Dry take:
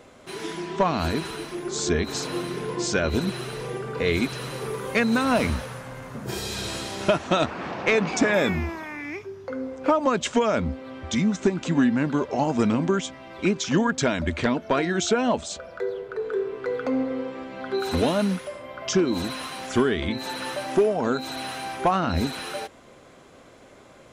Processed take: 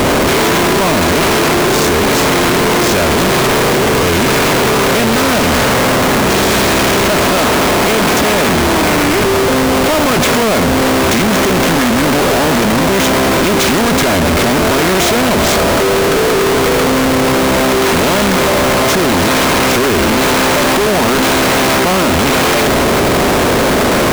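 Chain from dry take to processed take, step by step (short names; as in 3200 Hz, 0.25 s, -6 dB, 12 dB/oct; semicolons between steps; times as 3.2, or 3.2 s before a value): per-bin compression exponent 0.4; Schmitt trigger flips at -29 dBFS; gain +6 dB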